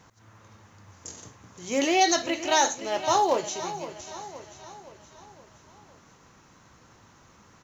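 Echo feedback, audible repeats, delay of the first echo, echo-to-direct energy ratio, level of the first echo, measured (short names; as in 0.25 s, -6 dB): 52%, 4, 0.519 s, -11.5 dB, -13.0 dB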